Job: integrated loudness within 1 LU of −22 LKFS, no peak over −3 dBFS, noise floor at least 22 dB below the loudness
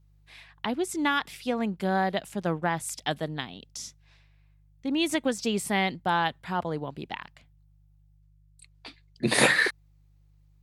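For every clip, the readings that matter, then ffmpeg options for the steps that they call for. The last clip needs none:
mains hum 50 Hz; hum harmonics up to 150 Hz; level of the hum −54 dBFS; integrated loudness −28.0 LKFS; sample peak −6.5 dBFS; target loudness −22.0 LKFS
→ -af "bandreject=frequency=50:width_type=h:width=4,bandreject=frequency=100:width_type=h:width=4,bandreject=frequency=150:width_type=h:width=4"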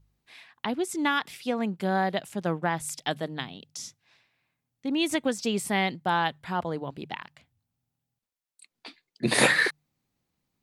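mains hum none found; integrated loudness −28.0 LKFS; sample peak −6.5 dBFS; target loudness −22.0 LKFS
→ -af "volume=6dB,alimiter=limit=-3dB:level=0:latency=1"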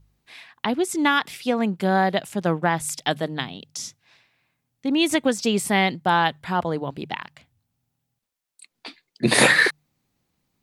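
integrated loudness −22.0 LKFS; sample peak −3.0 dBFS; background noise floor −80 dBFS

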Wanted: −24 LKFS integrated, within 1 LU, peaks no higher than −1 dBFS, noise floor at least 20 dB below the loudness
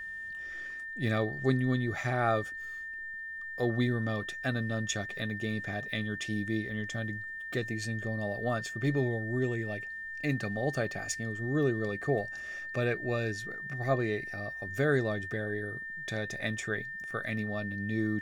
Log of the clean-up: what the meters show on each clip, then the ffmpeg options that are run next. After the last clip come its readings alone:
interfering tone 1,800 Hz; level of the tone −38 dBFS; integrated loudness −33.0 LKFS; sample peak −14.5 dBFS; target loudness −24.0 LKFS
→ -af "bandreject=frequency=1800:width=30"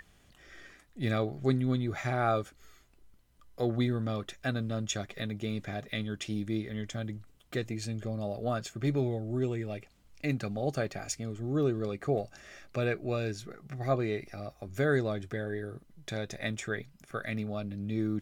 interfering tone none found; integrated loudness −33.5 LKFS; sample peak −14.5 dBFS; target loudness −24.0 LKFS
→ -af "volume=9.5dB"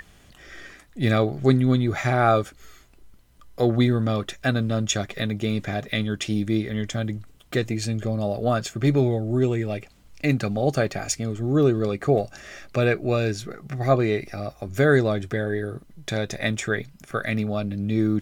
integrated loudness −24.0 LKFS; sample peak −5.0 dBFS; background noise floor −53 dBFS

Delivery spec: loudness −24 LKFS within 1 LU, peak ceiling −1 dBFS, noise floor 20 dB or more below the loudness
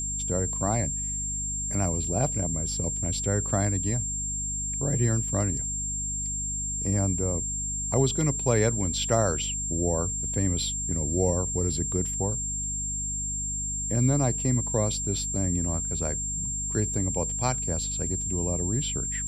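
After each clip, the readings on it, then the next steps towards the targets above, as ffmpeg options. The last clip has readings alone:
mains hum 50 Hz; hum harmonics up to 250 Hz; level of the hum −34 dBFS; interfering tone 7,400 Hz; level of the tone −29 dBFS; integrated loudness −26.5 LKFS; sample peak −10.0 dBFS; target loudness −24.0 LKFS
→ -af "bandreject=frequency=50:width_type=h:width=6,bandreject=frequency=100:width_type=h:width=6,bandreject=frequency=150:width_type=h:width=6,bandreject=frequency=200:width_type=h:width=6,bandreject=frequency=250:width_type=h:width=6"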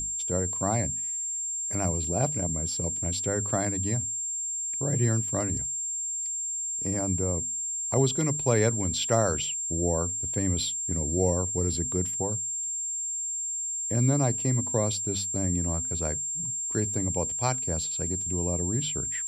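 mains hum none found; interfering tone 7,400 Hz; level of the tone −29 dBFS
→ -af "bandreject=frequency=7400:width=30"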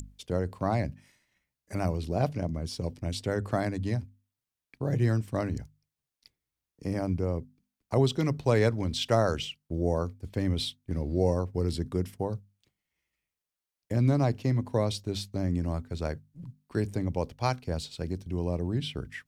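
interfering tone none found; integrated loudness −30.5 LKFS; sample peak −11.0 dBFS; target loudness −24.0 LKFS
→ -af "volume=6.5dB"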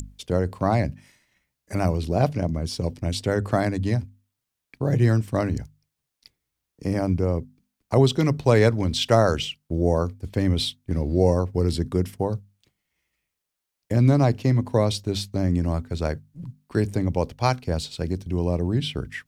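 integrated loudness −24.0 LKFS; sample peak −4.5 dBFS; background noise floor −83 dBFS

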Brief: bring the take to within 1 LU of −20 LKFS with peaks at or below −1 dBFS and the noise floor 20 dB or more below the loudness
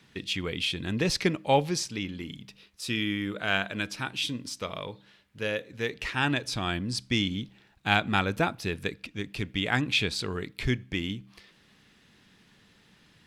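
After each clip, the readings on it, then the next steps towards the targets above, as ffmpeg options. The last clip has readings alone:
integrated loudness −29.5 LKFS; sample peak −6.0 dBFS; target loudness −20.0 LKFS
→ -af "volume=9.5dB,alimiter=limit=-1dB:level=0:latency=1"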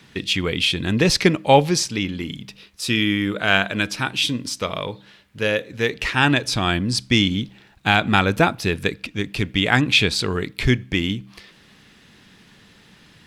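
integrated loudness −20.0 LKFS; sample peak −1.0 dBFS; background noise floor −52 dBFS

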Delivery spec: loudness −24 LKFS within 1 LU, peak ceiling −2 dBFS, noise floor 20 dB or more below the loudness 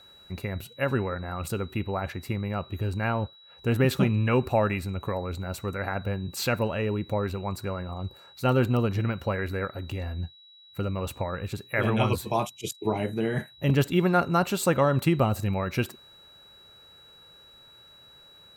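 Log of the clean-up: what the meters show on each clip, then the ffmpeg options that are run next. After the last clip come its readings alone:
interfering tone 3,900 Hz; level of the tone −51 dBFS; integrated loudness −28.0 LKFS; sample peak −10.0 dBFS; target loudness −24.0 LKFS
→ -af "bandreject=frequency=3900:width=30"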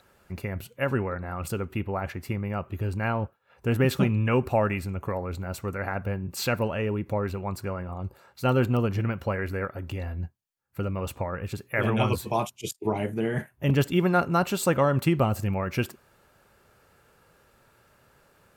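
interfering tone none found; integrated loudness −28.0 LKFS; sample peak −10.5 dBFS; target loudness −24.0 LKFS
→ -af "volume=4dB"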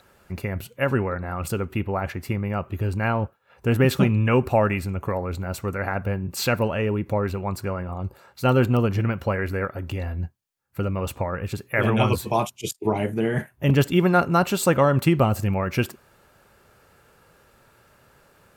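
integrated loudness −24.0 LKFS; sample peak −6.5 dBFS; background noise floor −59 dBFS

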